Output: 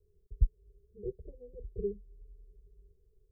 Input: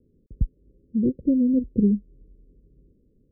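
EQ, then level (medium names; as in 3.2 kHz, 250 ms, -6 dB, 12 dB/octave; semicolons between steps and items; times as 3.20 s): elliptic band-stop 170–400 Hz, stop band 40 dB; static phaser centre 540 Hz, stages 6; 0.0 dB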